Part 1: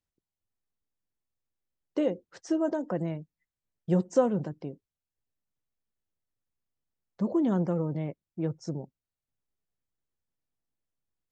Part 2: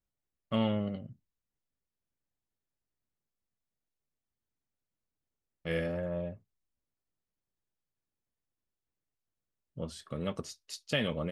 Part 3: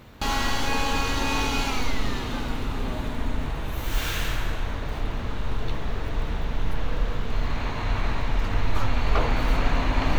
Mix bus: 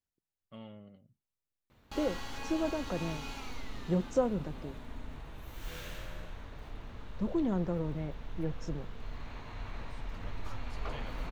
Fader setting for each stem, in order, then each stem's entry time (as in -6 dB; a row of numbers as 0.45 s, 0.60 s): -5.0 dB, -19.0 dB, -16.5 dB; 0.00 s, 0.00 s, 1.70 s